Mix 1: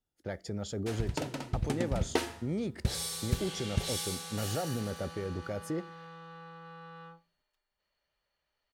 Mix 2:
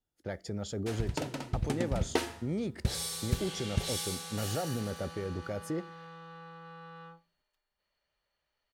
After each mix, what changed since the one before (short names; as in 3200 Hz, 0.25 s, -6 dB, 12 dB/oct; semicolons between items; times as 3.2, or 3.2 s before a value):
none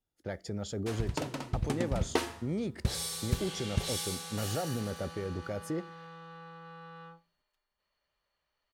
first sound: add bell 1100 Hz +7 dB 0.21 oct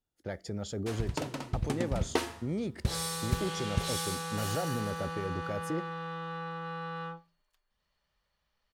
second sound +10.0 dB